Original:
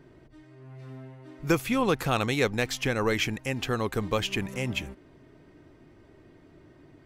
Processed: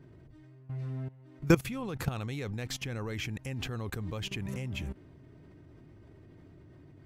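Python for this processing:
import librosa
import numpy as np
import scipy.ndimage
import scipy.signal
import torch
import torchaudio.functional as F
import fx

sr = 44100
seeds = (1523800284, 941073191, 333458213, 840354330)

y = fx.peak_eq(x, sr, hz=98.0, db=11.5, octaves=2.1)
y = fx.level_steps(y, sr, step_db=18)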